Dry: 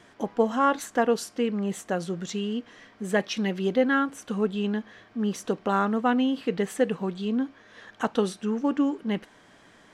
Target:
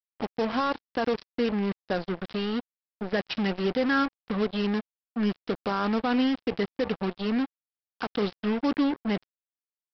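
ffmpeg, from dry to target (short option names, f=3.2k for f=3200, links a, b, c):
-af "alimiter=limit=-16.5dB:level=0:latency=1:release=49,aresample=11025,acrusher=bits=4:mix=0:aa=0.5,aresample=44100"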